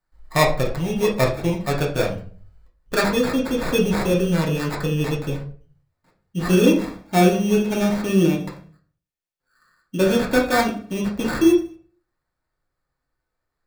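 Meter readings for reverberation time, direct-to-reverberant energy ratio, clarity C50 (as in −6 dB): 0.40 s, −2.5 dB, 9.0 dB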